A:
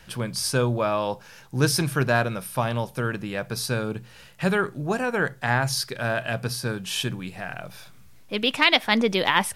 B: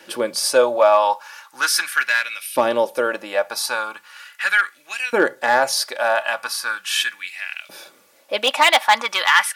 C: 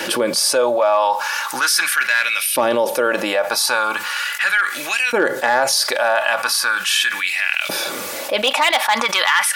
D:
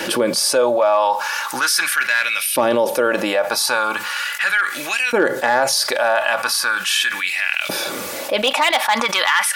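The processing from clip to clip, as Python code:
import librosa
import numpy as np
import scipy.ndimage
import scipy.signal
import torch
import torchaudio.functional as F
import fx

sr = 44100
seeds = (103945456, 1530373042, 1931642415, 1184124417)

y1 = x + 0.53 * np.pad(x, (int(3.5 * sr / 1000.0), 0))[:len(x)]
y1 = np.clip(10.0 ** (14.0 / 20.0) * y1, -1.0, 1.0) / 10.0 ** (14.0 / 20.0)
y1 = fx.filter_lfo_highpass(y1, sr, shape='saw_up', hz=0.39, low_hz=350.0, high_hz=2800.0, q=2.7)
y1 = y1 * 10.0 ** (4.5 / 20.0)
y2 = fx.env_flatten(y1, sr, amount_pct=70)
y2 = y2 * 10.0 ** (-3.5 / 20.0)
y3 = fx.low_shelf(y2, sr, hz=380.0, db=5.0)
y3 = y3 * 10.0 ** (-1.0 / 20.0)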